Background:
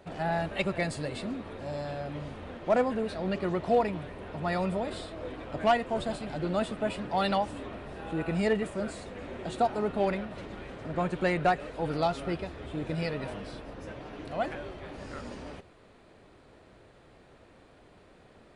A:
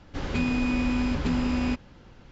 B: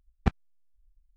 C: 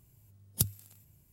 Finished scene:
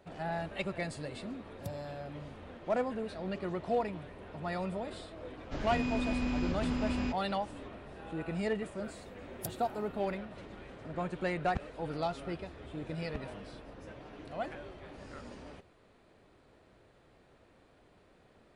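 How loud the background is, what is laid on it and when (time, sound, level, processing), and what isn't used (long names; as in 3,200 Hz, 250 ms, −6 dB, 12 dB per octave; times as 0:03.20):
background −6.5 dB
0:01.05: mix in C −9.5 dB + low-pass filter 1,200 Hz 6 dB per octave
0:05.37: mix in A −7.5 dB
0:08.84: mix in C −13.5 dB
0:11.29: mix in B −12.5 dB
0:12.88: mix in B −17.5 dB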